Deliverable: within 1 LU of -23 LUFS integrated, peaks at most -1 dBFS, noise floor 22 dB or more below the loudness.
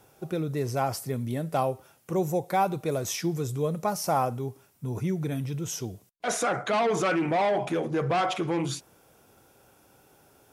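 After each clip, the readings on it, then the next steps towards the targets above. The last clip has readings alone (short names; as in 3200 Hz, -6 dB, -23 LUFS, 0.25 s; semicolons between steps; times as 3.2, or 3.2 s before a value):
loudness -28.5 LUFS; peak -13.5 dBFS; loudness target -23.0 LUFS
-> gain +5.5 dB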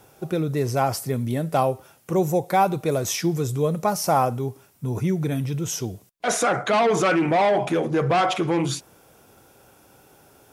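loudness -23.0 LUFS; peak -8.0 dBFS; noise floor -55 dBFS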